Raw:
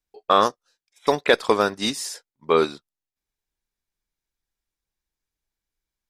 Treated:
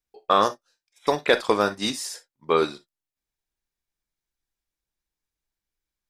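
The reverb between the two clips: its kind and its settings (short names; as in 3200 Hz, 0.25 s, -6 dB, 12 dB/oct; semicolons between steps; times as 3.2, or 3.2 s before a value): non-linear reverb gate 80 ms flat, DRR 10.5 dB; gain -2 dB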